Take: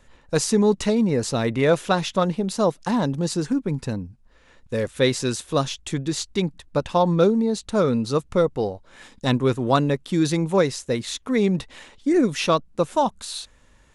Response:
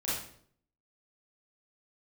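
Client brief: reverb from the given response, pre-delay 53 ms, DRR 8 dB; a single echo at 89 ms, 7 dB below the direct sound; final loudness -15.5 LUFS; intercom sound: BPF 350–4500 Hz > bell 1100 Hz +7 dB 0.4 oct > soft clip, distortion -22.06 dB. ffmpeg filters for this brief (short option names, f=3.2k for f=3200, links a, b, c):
-filter_complex "[0:a]aecho=1:1:89:0.447,asplit=2[a][b];[1:a]atrim=start_sample=2205,adelay=53[c];[b][c]afir=irnorm=-1:irlink=0,volume=-13.5dB[d];[a][d]amix=inputs=2:normalize=0,highpass=350,lowpass=4.5k,equalizer=f=1.1k:t=o:w=0.4:g=7,asoftclip=threshold=-7.5dB,volume=8dB"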